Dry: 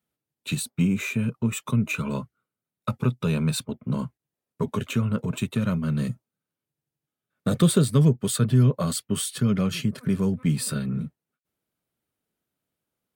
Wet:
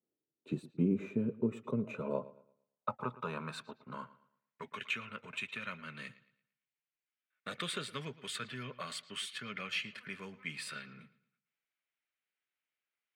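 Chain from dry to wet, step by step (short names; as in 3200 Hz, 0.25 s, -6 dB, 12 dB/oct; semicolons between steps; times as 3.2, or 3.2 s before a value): band-pass sweep 370 Hz -> 2200 Hz, 1.24–4.73; analogue delay 0.113 s, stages 4096, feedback 33%, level -18 dB; gain +2 dB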